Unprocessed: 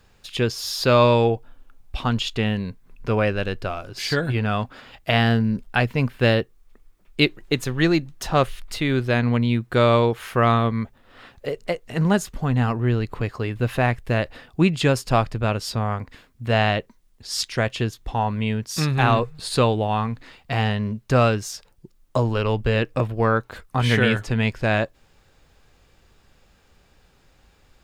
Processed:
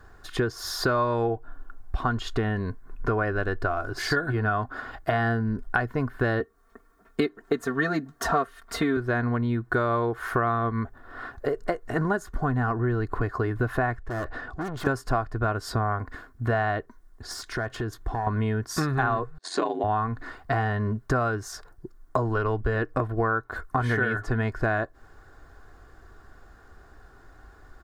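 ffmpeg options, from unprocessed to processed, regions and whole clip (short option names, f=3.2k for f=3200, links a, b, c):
-filter_complex "[0:a]asettb=1/sr,asplit=3[a][b][c];[a]atrim=end=6.404[d];[b]atrim=start=6.4:end=8.97,asetpts=PTS-STARTPTS,afade=t=in:d=0.004:c=qsin,afade=t=out:st=2.566:d=0.004:c=qsin,highpass=83,aecho=1:1:4.4:0.91,atrim=end_sample=113337[e];[c]atrim=start=8.966[f];[d][e]acrossfade=d=0.004:c1=hsin:c2=qsin[g];[g][f]acrossfade=d=0.004:c1=qsin:c2=hsin,asettb=1/sr,asplit=3[h][i][j];[h]atrim=end=13.974[k];[i]atrim=start=13.97:end=14.87,asetpts=PTS-STARTPTS,afade=t=in:d=0.004:c=qsin,afade=t=out:st=0.896:d=0.004:c=qsin,lowpass=6.3k,acompressor=mode=upward:threshold=-36dB:ratio=2.5:attack=3.2:release=140:knee=2.83:detection=peak,aeval=exprs='(tanh(44.7*val(0)+0.25)-tanh(0.25))/44.7':c=same[l];[j]atrim=start=14.866[m];[k][l]acrossfade=d=0.004:c1=hsin:c2=qsin[n];[n][m]acrossfade=d=0.004:c1=qsin:c2=hsin,asettb=1/sr,asplit=3[o][p][q];[o]atrim=end=17.314[r];[p]atrim=start=17.31:end=18.27,asetpts=PTS-STARTPTS,afade=t=in:d=0.004:c=qsin,afade=t=out:st=0.956:d=0.004:c=qsin,acompressor=threshold=-29dB:ratio=10:attack=3.2:release=140:knee=1:detection=peak,aeval=exprs='clip(val(0),-1,0.0335)':c=same[s];[q]atrim=start=18.266[t];[r][s]acrossfade=d=0.004:c1=hsin:c2=qsin[u];[u][t]acrossfade=d=0.004:c1=qsin:c2=hsin,asettb=1/sr,asplit=3[v][w][x];[v]atrim=end=19.384[y];[w]atrim=start=19.38:end=19.84,asetpts=PTS-STARTPTS,afade=t=in:d=0.004:c=qsin,afade=t=out:st=0.456:d=0.004:c=qsin,agate=range=-32dB:threshold=-35dB:ratio=16:release=100:detection=peak,aeval=exprs='val(0)*sin(2*PI*45*n/s)':c=same,highpass=f=250:w=0.5412,highpass=f=250:w=1.3066,equalizer=f=470:t=q:w=4:g=-5,equalizer=f=1.3k:t=q:w=4:g=-9,equalizer=f=2.2k:t=q:w=4:g=3,equalizer=f=6.4k:t=q:w=4:g=6,lowpass=f=8.1k:w=0.5412,lowpass=f=8.1k:w=1.3066[z];[x]atrim=start=19.836[aa];[y][z]acrossfade=d=0.004:c1=hsin:c2=qsin[ab];[ab][aa]acrossfade=d=0.004:c1=qsin:c2=hsin,highshelf=f=2k:t=q:w=3:g=-8.5,aecho=1:1:2.8:0.52,acompressor=threshold=-27dB:ratio=6,volume=4.5dB"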